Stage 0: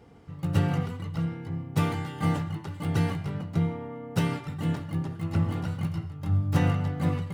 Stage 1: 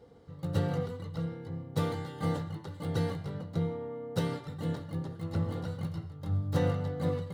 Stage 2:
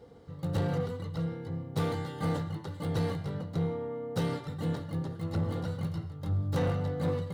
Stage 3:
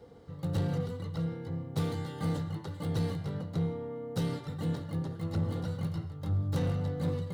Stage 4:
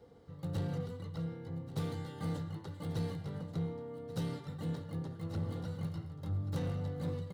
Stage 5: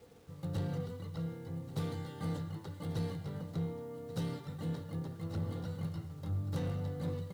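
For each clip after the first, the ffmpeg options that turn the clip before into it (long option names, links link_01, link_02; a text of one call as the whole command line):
ffmpeg -i in.wav -af "equalizer=frequency=500:width_type=o:width=0.33:gain=11,equalizer=frequency=2500:width_type=o:width=0.33:gain=-9,equalizer=frequency=4000:width_type=o:width=0.33:gain=8,volume=-6dB" out.wav
ffmpeg -i in.wav -af "asoftclip=type=tanh:threshold=-26dB,volume=3dB" out.wav
ffmpeg -i in.wav -filter_complex "[0:a]acrossover=split=340|3000[link_01][link_02][link_03];[link_02]acompressor=threshold=-44dB:ratio=2[link_04];[link_01][link_04][link_03]amix=inputs=3:normalize=0" out.wav
ffmpeg -i in.wav -af "aecho=1:1:1134:0.168,volume=-5.5dB" out.wav
ffmpeg -i in.wav -af "acrusher=bits=10:mix=0:aa=0.000001" out.wav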